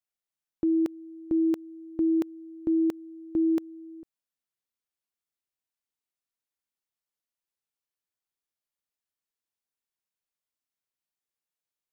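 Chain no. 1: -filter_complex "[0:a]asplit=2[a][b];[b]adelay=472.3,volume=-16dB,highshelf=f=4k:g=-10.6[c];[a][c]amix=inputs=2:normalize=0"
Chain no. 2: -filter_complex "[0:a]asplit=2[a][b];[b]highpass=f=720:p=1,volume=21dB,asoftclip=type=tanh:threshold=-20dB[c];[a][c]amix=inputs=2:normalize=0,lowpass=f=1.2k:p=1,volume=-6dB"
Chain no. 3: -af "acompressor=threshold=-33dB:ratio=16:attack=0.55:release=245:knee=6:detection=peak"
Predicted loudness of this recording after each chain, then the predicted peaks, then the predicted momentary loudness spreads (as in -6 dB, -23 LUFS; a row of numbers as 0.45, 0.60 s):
-28.0, -29.0, -40.0 LUFS; -20.0, -20.5, -29.5 dBFS; 19, 10, 7 LU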